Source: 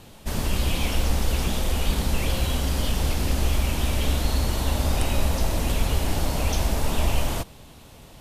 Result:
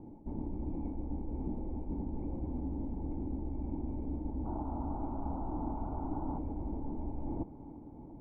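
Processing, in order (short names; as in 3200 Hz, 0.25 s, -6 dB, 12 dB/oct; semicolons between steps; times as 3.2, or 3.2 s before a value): reverse; compressor 6:1, threshold -30 dBFS, peak gain reduction 14 dB; reverse; painted sound noise, 4.45–6.39, 600–1500 Hz -35 dBFS; vocal tract filter u; air absorption 310 m; thinning echo 0.34 s, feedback 72%, high-pass 440 Hz, level -14.5 dB; gain +9.5 dB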